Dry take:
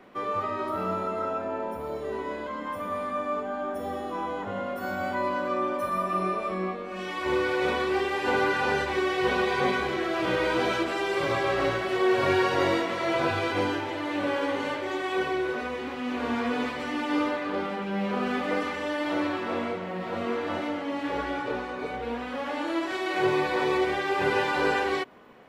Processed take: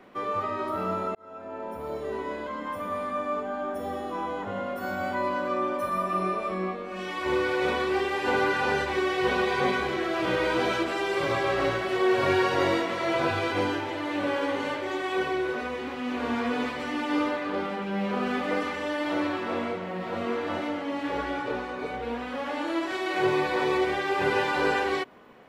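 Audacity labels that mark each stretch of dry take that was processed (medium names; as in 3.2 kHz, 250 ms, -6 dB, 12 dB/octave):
1.150000	1.920000	fade in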